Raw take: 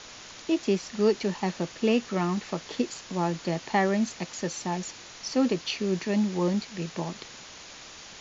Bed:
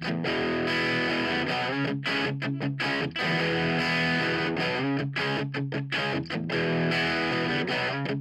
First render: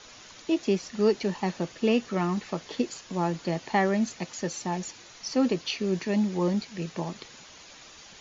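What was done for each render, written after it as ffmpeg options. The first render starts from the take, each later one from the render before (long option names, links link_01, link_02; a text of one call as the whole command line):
ffmpeg -i in.wav -af "afftdn=noise_reduction=7:noise_floor=-46" out.wav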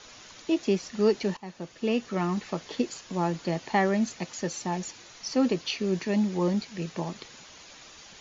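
ffmpeg -i in.wav -filter_complex "[0:a]asplit=2[link_01][link_02];[link_01]atrim=end=1.37,asetpts=PTS-STARTPTS,afade=type=out:start_time=1.366:duration=0.004:curve=hsin:silence=0.141254[link_03];[link_02]atrim=start=1.37,asetpts=PTS-STARTPTS,afade=type=in:duration=1.21:curve=qsin:silence=0.141254[link_04];[link_03][link_04]concat=n=2:v=0:a=1" out.wav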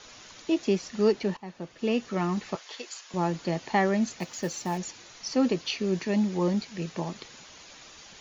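ffmpeg -i in.wav -filter_complex "[0:a]asettb=1/sr,asplit=3[link_01][link_02][link_03];[link_01]atrim=end=1.124[link_04];[link_02]atrim=start=1.12:end=1.79,asetpts=PTS-STARTPTS,afade=type=in:duration=0.004:curve=qsin,afade=type=out:start_time=0.666:duration=0.004:curve=qsin,lowpass=frequency=3800:poles=1[link_05];[link_03]atrim=start=1.786[link_06];[link_04][link_05]acrossfade=duration=0.004:curve1=hsin:curve2=qsin[link_07];[link_07][link_06]acrossfade=duration=0.004:curve1=qsin:curve2=hsin,asettb=1/sr,asplit=3[link_08][link_09][link_10];[link_08]atrim=end=2.554[link_11];[link_09]atrim=start=2.55:end=3.14,asetpts=PTS-STARTPTS,afade=type=in:duration=0.004:curve=qsin,afade=type=out:start_time=0.586:duration=0.004:curve=qsin,highpass=860[link_12];[link_10]atrim=start=3.136[link_13];[link_11][link_12]acrossfade=duration=0.004:curve1=hsin:curve2=qsin[link_14];[link_14][link_13]acrossfade=duration=0.004:curve1=qsin:curve2=hsin,asettb=1/sr,asplit=3[link_15][link_16][link_17];[link_15]atrim=end=4.194[link_18];[link_16]atrim=start=4.19:end=4.78,asetpts=PTS-STARTPTS,afade=type=in:duration=0.004:curve=qsin,afade=type=out:start_time=0.586:duration=0.004:curve=qsin,acrusher=bits=6:mode=log:mix=0:aa=0.000001[link_19];[link_17]atrim=start=4.776[link_20];[link_18][link_19]acrossfade=duration=0.004:curve1=hsin:curve2=qsin[link_21];[link_21][link_20]acrossfade=duration=0.004:curve1=qsin:curve2=hsin" out.wav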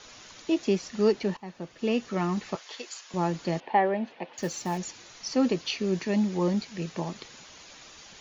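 ffmpeg -i in.wav -filter_complex "[0:a]asettb=1/sr,asplit=3[link_01][link_02][link_03];[link_01]atrim=end=3.604[link_04];[link_02]atrim=start=3.6:end=4.38,asetpts=PTS-STARTPTS,afade=type=in:duration=0.004:curve=qsin,afade=type=out:start_time=0.776:duration=0.004:curve=qsin,highpass=300,equalizer=frequency=510:width_type=q:width=4:gain=4,equalizer=frequency=840:width_type=q:width=4:gain=5,equalizer=frequency=1300:width_type=q:width=4:gain=-8,equalizer=frequency=2100:width_type=q:width=4:gain=-4,lowpass=frequency=2900:width=0.5412,lowpass=frequency=2900:width=1.3066[link_05];[link_03]atrim=start=4.376[link_06];[link_04][link_05]acrossfade=duration=0.004:curve1=hsin:curve2=qsin[link_07];[link_07][link_06]acrossfade=duration=0.004:curve1=qsin:curve2=hsin" out.wav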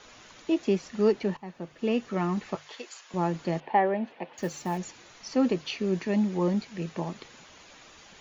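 ffmpeg -i in.wav -af "equalizer=frequency=5300:width=0.96:gain=-6.5,bandreject=frequency=50:width_type=h:width=6,bandreject=frequency=100:width_type=h:width=6,bandreject=frequency=150:width_type=h:width=6" out.wav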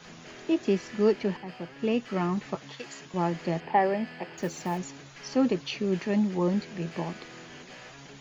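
ffmpeg -i in.wav -i bed.wav -filter_complex "[1:a]volume=-20dB[link_01];[0:a][link_01]amix=inputs=2:normalize=0" out.wav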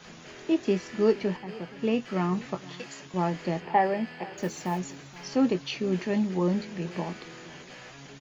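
ffmpeg -i in.wav -filter_complex "[0:a]asplit=2[link_01][link_02];[link_02]adelay=22,volume=-11dB[link_03];[link_01][link_03]amix=inputs=2:normalize=0,aecho=1:1:473:0.0944" out.wav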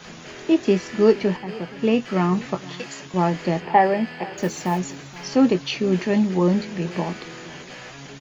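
ffmpeg -i in.wav -af "volume=7dB" out.wav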